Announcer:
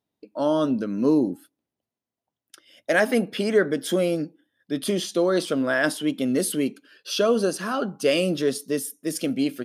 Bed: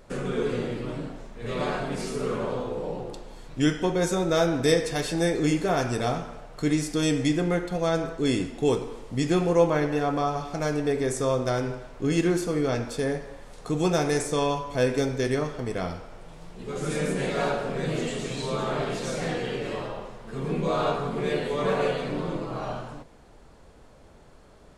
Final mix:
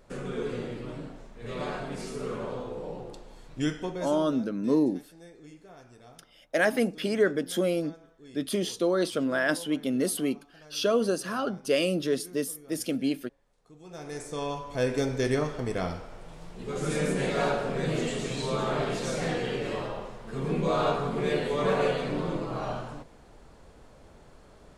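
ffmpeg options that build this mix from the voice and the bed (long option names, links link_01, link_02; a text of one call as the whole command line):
ffmpeg -i stem1.wav -i stem2.wav -filter_complex "[0:a]adelay=3650,volume=-4dB[link_01];[1:a]volume=20dB,afade=type=out:start_time=3.62:duration=0.76:silence=0.0944061,afade=type=in:start_time=13.85:duration=1.47:silence=0.0530884[link_02];[link_01][link_02]amix=inputs=2:normalize=0" out.wav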